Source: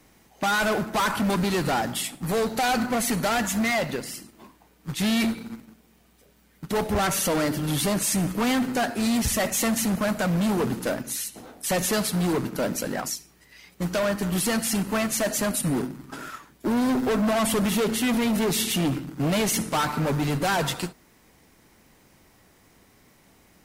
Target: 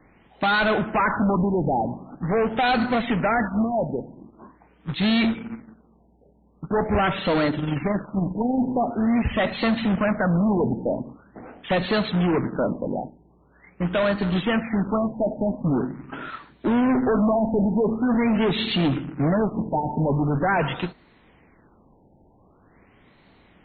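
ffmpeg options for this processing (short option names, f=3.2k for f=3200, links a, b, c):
-filter_complex "[0:a]asettb=1/sr,asplit=3[a][b][c];[a]atrim=end=7.504[d];[b]atrim=start=7.5:end=8.58,asetpts=PTS-STARTPTS,afade=t=in:d=0.004:c=qsin,afade=t=out:st=1.076:d=0.004:c=qsin,tremolo=f=22:d=0.462[e];[c]atrim=start=8.576[f];[d][e]acrossfade=d=0.004:c1=hsin:c2=qsin[g];[g][f]acrossfade=d=0.004:c1=qsin:c2=hsin,afftfilt=real='re*lt(b*sr/1024,920*pow(4500/920,0.5+0.5*sin(2*PI*0.44*pts/sr)))':imag='im*lt(b*sr/1024,920*pow(4500/920,0.5+0.5*sin(2*PI*0.44*pts/sr)))':win_size=1024:overlap=0.75,volume=3dB"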